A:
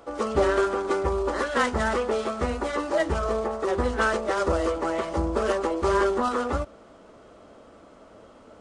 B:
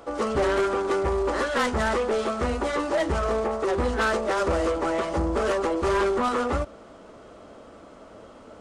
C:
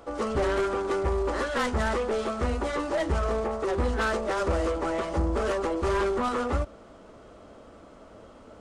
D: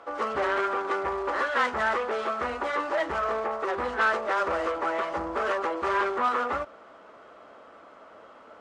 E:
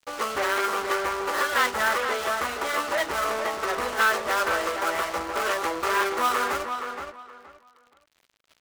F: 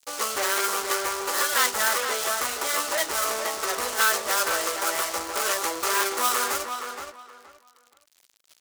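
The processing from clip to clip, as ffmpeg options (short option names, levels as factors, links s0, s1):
-af "asoftclip=type=tanh:threshold=0.0794,volume=1.5"
-af "lowshelf=f=110:g=7,volume=0.668"
-af "bandpass=f=1400:t=q:w=0.88:csg=0,volume=1.88"
-filter_complex "[0:a]aeval=exprs='sgn(val(0))*max(abs(val(0))-0.0075,0)':c=same,asplit=2[s0][s1];[s1]adelay=471,lowpass=f=3500:p=1,volume=0.473,asplit=2[s2][s3];[s3]adelay=471,lowpass=f=3500:p=1,volume=0.23,asplit=2[s4][s5];[s5]adelay=471,lowpass=f=3500:p=1,volume=0.23[s6];[s0][s2][s4][s6]amix=inputs=4:normalize=0,crystalizer=i=4.5:c=0"
-af "bass=f=250:g=-5,treble=f=4000:g=14,volume=0.794"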